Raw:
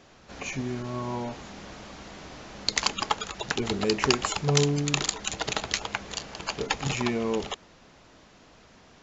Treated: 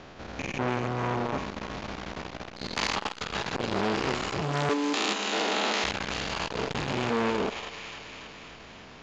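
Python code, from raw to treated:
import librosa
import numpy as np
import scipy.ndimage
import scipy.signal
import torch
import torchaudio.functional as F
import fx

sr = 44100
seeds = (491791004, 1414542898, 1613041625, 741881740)

y = fx.spec_steps(x, sr, hold_ms=200)
y = fx.ellip_highpass(y, sr, hz=210.0, order=4, stop_db=40, at=(4.69, 5.84))
y = fx.rider(y, sr, range_db=3, speed_s=0.5)
y = fx.air_absorb(y, sr, metres=130.0)
y = fx.echo_wet_highpass(y, sr, ms=287, feedback_pct=67, hz=1400.0, wet_db=-6)
y = fx.transformer_sat(y, sr, knee_hz=1900.0)
y = y * 10.0 ** (9.0 / 20.0)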